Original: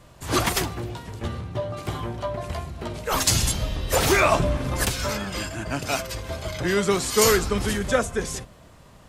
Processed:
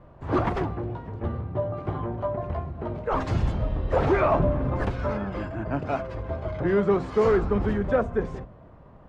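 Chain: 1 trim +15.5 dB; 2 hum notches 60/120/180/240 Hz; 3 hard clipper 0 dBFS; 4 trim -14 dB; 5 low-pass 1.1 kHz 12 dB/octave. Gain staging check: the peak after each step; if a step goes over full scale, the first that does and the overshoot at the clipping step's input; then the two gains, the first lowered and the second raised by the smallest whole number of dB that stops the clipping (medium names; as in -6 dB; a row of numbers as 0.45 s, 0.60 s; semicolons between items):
+9.5 dBFS, +9.5 dBFS, 0.0 dBFS, -14.0 dBFS, -13.5 dBFS; step 1, 9.5 dB; step 1 +5.5 dB, step 4 -4 dB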